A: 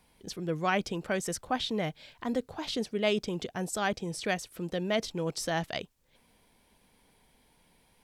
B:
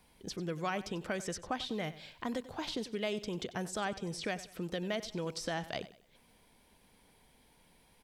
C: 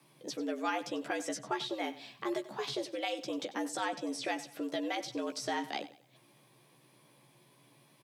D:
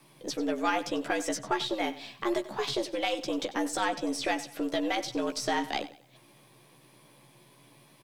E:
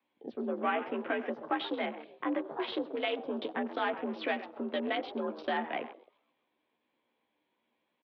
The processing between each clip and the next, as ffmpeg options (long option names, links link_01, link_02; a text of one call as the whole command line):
ffmpeg -i in.wav -filter_complex "[0:a]acrossover=split=1200|6900[link_01][link_02][link_03];[link_01]acompressor=threshold=-35dB:ratio=4[link_04];[link_02]acompressor=threshold=-40dB:ratio=4[link_05];[link_03]acompressor=threshold=-57dB:ratio=4[link_06];[link_04][link_05][link_06]amix=inputs=3:normalize=0,aecho=1:1:94|188|282:0.158|0.0555|0.0194" out.wav
ffmpeg -i in.wav -filter_complex "[0:a]afreqshift=110,asplit=2[link_01][link_02];[link_02]adelay=14,volume=-5dB[link_03];[link_01][link_03]amix=inputs=2:normalize=0" out.wav
ffmpeg -i in.wav -af "aeval=exprs='if(lt(val(0),0),0.708*val(0),val(0))':channel_layout=same,volume=7dB" out.wav
ffmpeg -i in.wav -filter_complex "[0:a]asplit=6[link_01][link_02][link_03][link_04][link_05][link_06];[link_02]adelay=132,afreqshift=89,volume=-14.5dB[link_07];[link_03]adelay=264,afreqshift=178,volume=-20.3dB[link_08];[link_04]adelay=396,afreqshift=267,volume=-26.2dB[link_09];[link_05]adelay=528,afreqshift=356,volume=-32dB[link_10];[link_06]adelay=660,afreqshift=445,volume=-37.9dB[link_11];[link_01][link_07][link_08][link_09][link_10][link_11]amix=inputs=6:normalize=0,afwtdn=0.01,highpass=frequency=290:width_type=q:width=0.5412,highpass=frequency=290:width_type=q:width=1.307,lowpass=frequency=3600:width_type=q:width=0.5176,lowpass=frequency=3600:width_type=q:width=0.7071,lowpass=frequency=3600:width_type=q:width=1.932,afreqshift=-54,volume=-2.5dB" out.wav